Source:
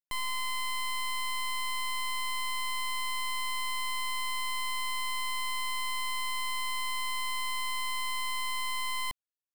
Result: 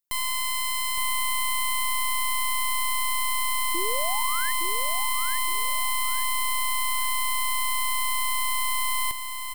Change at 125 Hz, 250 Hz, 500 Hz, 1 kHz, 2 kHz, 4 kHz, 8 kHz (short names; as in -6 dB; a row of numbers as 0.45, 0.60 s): n/a, +12.0 dB, +20.0 dB, +6.5 dB, +5.5 dB, +4.0 dB, +11.5 dB